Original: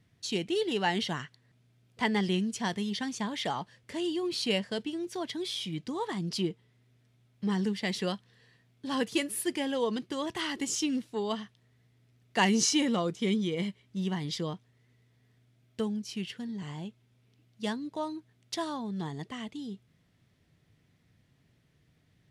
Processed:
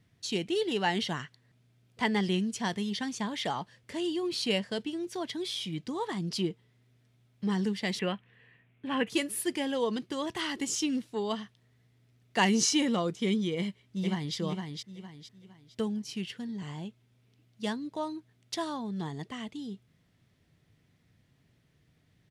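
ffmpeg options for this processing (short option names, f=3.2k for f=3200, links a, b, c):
-filter_complex "[0:a]asettb=1/sr,asplit=3[a][b][c];[a]atrim=end=7.994[d];[b]atrim=start=7.99:end=9.1,asetpts=PTS-STARTPTS,afade=t=in:d=0.004:c=qsin,afade=t=out:st=1.106:d=0.004:c=qsin,highshelf=f=3.5k:t=q:w=3:g=-11.5[e];[c]atrim=start=9.096[f];[d][e]acrossfade=d=0.004:c1=hsin:c2=qsin[g];[g][f]acrossfade=d=0.004:c1=qsin:c2=hsin,asplit=2[h][i];[i]afade=t=in:st=13.57:d=0.01,afade=t=out:st=14.36:d=0.01,aecho=0:1:460|920|1380|1840:0.562341|0.196819|0.0688868|0.0241104[j];[h][j]amix=inputs=2:normalize=0"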